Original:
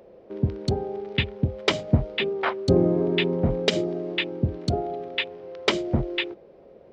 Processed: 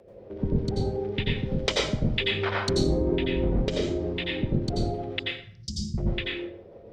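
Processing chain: octaver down 2 oct, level -4 dB; 1.28–2.83 high shelf 2800 Hz +10.5 dB; 5.19–5.98 Chebyshev band-stop 210–5000 Hz, order 4; compressor 3:1, threshold -24 dBFS, peak gain reduction 10 dB; rotary speaker horn 6.3 Hz; plate-style reverb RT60 0.54 s, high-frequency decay 0.75×, pre-delay 75 ms, DRR -3 dB; gain -1 dB

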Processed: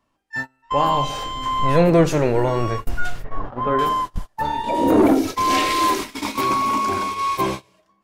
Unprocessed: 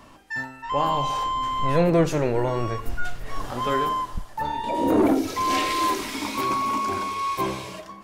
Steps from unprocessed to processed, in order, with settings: 3.24–3.79 LPF 1400 Hz 12 dB/oct; gate -29 dBFS, range -26 dB; 1.04–1.46 bell 960 Hz -14.5 dB 0.32 oct; gain +4.5 dB

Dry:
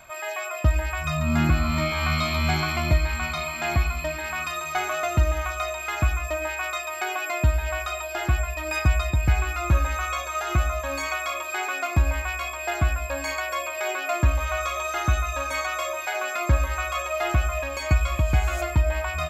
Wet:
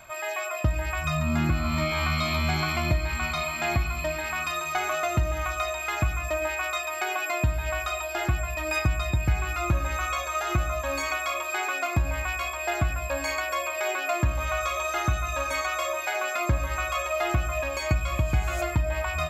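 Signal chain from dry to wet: compressor 2.5:1, threshold -22 dBFS, peak gain reduction 5.5 dB; on a send: reverb RT60 0.90 s, pre-delay 4 ms, DRR 14 dB

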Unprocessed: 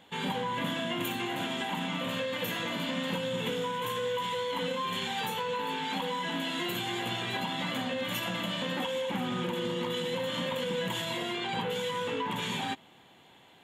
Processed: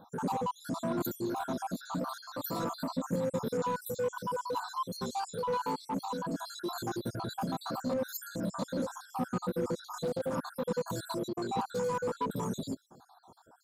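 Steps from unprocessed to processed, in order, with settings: random spectral dropouts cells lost 63%; elliptic band-stop 1400–4200 Hz, stop band 40 dB; in parallel at -10 dB: wavefolder -37.5 dBFS; 9.87–10.34 on the sum: Doppler distortion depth 0.34 ms; gain +3 dB

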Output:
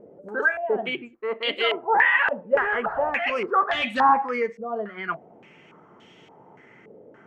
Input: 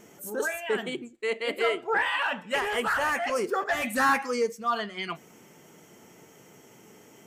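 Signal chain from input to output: stepped low-pass 3.5 Hz 540–3300 Hz

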